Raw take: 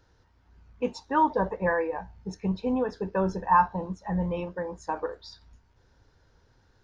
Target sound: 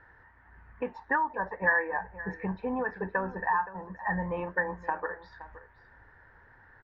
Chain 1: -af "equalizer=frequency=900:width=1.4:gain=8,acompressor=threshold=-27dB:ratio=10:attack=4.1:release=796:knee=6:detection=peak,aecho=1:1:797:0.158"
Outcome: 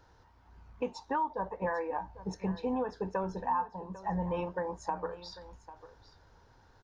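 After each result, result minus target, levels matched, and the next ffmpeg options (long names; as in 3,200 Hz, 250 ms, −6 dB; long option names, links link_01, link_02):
2,000 Hz band −11.5 dB; echo 277 ms late
-af "equalizer=frequency=900:width=1.4:gain=8,acompressor=threshold=-27dB:ratio=10:attack=4.1:release=796:knee=6:detection=peak,lowpass=frequency=1800:width_type=q:width=9.3,aecho=1:1:797:0.158"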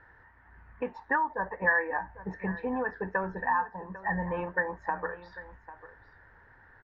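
echo 277 ms late
-af "equalizer=frequency=900:width=1.4:gain=8,acompressor=threshold=-27dB:ratio=10:attack=4.1:release=796:knee=6:detection=peak,lowpass=frequency=1800:width_type=q:width=9.3,aecho=1:1:520:0.158"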